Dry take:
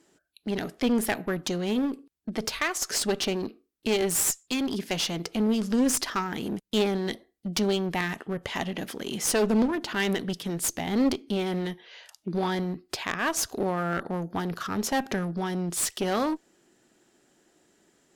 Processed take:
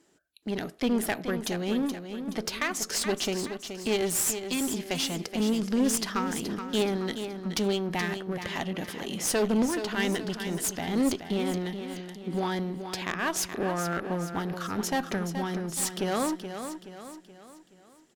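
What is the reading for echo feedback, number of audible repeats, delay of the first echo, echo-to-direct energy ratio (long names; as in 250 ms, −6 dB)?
45%, 4, 425 ms, −8.0 dB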